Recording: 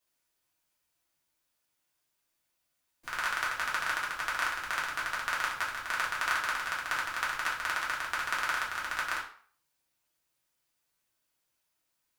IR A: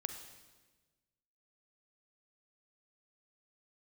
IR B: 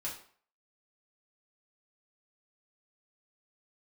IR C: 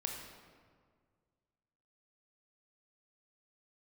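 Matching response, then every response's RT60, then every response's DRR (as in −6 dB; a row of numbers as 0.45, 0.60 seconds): B; 1.3, 0.50, 1.8 seconds; 7.0, −5.5, 1.0 decibels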